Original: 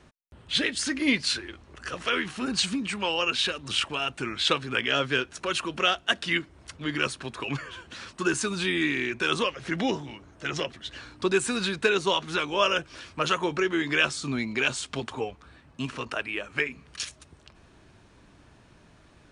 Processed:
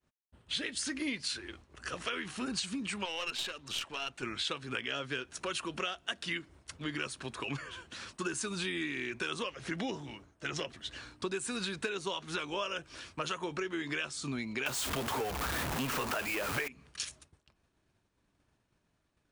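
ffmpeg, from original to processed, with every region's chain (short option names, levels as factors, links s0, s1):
-filter_complex "[0:a]asettb=1/sr,asplit=3[s0][s1][s2];[s0]atrim=end=3.054[s3];[s1]atrim=start=3.05:end=4.23,asetpts=PTS-STARTPTS,afade=t=in:d=0.004:c=qsin,afade=t=out:st=1.176:d=0.004:c=qsin,lowpass=8100,aeval=exprs='(tanh(8.91*val(0)+0.6)-tanh(0.6))/8.91':c=same,lowshelf=f=390:g=-5.5[s4];[s2]atrim=start=4.226[s5];[s3][s4]acrossfade=d=0.004:c1=hsin:c2=qsin[s6];[s6][s5]acrossfade=d=0.004:c1=qsin:c2=hsin,asettb=1/sr,asplit=3[s7][s8][s9];[s7]atrim=end=14.664[s10];[s8]atrim=start=14.66:end=16.68,asetpts=PTS-STARTPTS,afade=t=in:d=0.004:c=qsin,afade=t=out:st=2.016:d=0.004:c=qsin,aeval=exprs='val(0)+0.5*0.0596*sgn(val(0))':c=same,equalizer=f=950:w=0.54:g=6[s11];[s9]atrim=start=16.676[s12];[s10][s11]acrossfade=d=0.004:c1=hsin:c2=qsin[s13];[s13][s12]acrossfade=d=0.004:c1=qsin:c2=hsin,agate=range=0.0224:threshold=0.00631:ratio=3:detection=peak,highshelf=f=8900:g=9,acompressor=threshold=0.0398:ratio=6,volume=0.596"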